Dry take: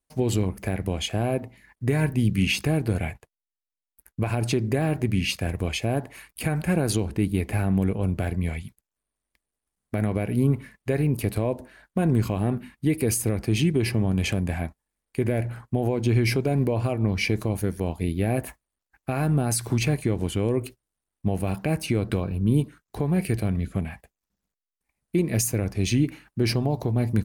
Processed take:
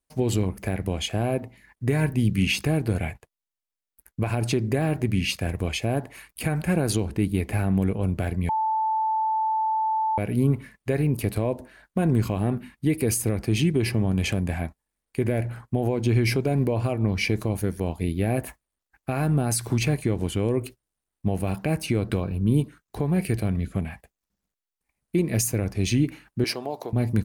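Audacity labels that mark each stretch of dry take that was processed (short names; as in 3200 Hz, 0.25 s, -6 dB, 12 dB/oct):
8.490000	10.180000	bleep 878 Hz -21 dBFS
26.440000	26.930000	HPF 450 Hz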